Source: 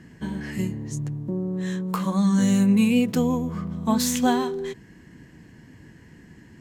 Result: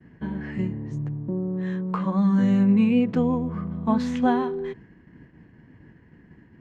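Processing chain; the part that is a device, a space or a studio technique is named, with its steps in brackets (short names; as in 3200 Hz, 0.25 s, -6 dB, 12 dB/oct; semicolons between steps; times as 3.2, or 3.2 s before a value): hearing-loss simulation (LPF 2000 Hz 12 dB/oct; expander -44 dBFS)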